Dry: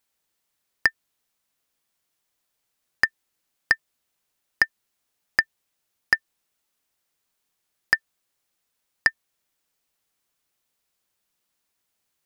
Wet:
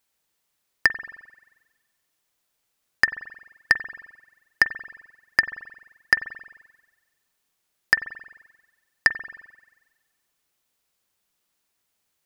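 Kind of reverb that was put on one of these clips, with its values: spring tank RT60 1.2 s, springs 44 ms, chirp 65 ms, DRR 12 dB; trim +1.5 dB

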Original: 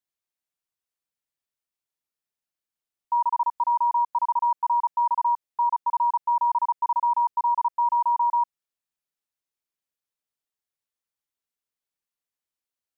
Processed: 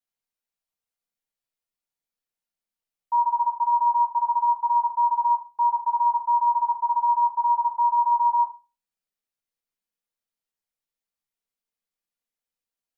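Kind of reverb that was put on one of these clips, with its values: simulated room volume 140 m³, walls furnished, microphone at 1.7 m; trim -4.5 dB

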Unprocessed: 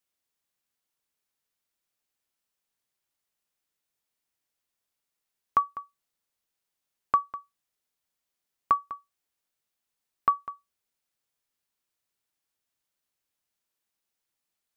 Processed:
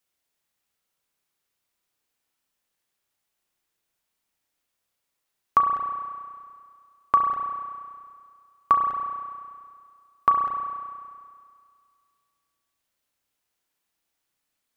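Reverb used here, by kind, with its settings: spring tank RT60 2.1 s, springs 32 ms, chirp 30 ms, DRR 2.5 dB; trim +4 dB

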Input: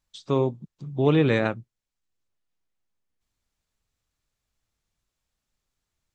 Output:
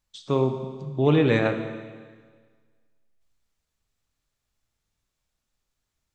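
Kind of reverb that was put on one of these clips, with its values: Schroeder reverb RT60 1.6 s, combs from 27 ms, DRR 6.5 dB

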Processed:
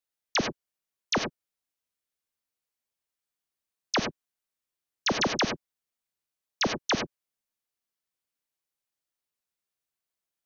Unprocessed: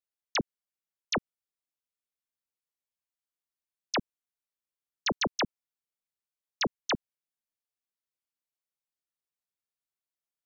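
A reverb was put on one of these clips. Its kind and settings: gated-style reverb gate 120 ms rising, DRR 5.5 dB; trim +3 dB

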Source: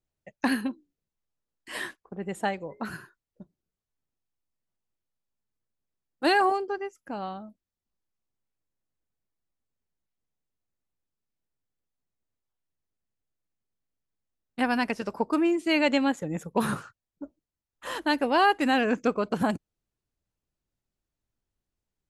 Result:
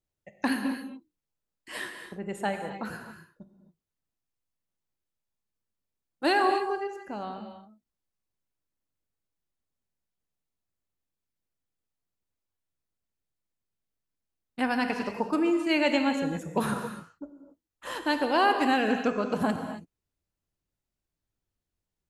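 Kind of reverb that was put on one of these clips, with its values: gated-style reverb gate 300 ms flat, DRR 5.5 dB; trim -2 dB

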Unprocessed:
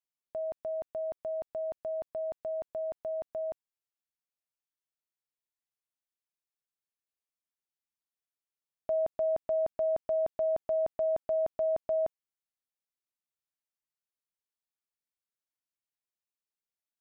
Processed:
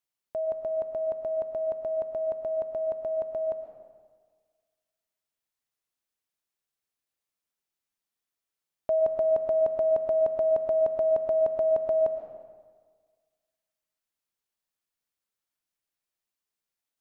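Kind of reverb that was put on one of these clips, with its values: algorithmic reverb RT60 1.6 s, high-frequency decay 0.75×, pre-delay 75 ms, DRR 6 dB; trim +4.5 dB

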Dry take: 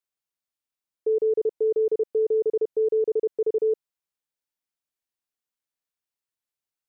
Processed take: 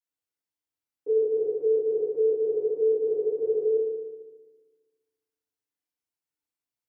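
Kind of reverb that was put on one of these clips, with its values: FDN reverb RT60 1.3 s, low-frequency decay 1.35×, high-frequency decay 0.6×, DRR -9 dB; trim -11.5 dB

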